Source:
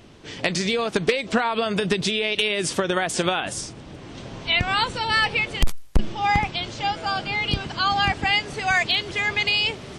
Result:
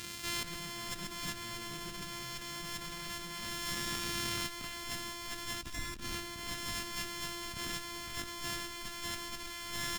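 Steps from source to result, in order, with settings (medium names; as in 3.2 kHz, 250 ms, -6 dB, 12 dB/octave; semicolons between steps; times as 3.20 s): sorted samples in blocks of 128 samples; treble shelf 3.5 kHz +6.5 dB; doubling 31 ms -11 dB; overdrive pedal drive 28 dB, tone 6.1 kHz, clips at -2.5 dBFS; amplifier tone stack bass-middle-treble 6-0-2; echo whose repeats swap between lows and highs 155 ms, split 1.2 kHz, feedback 83%, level -13.5 dB; reverberation RT60 4.4 s, pre-delay 48 ms, DRR 12 dB; compressor with a negative ratio -41 dBFS, ratio -1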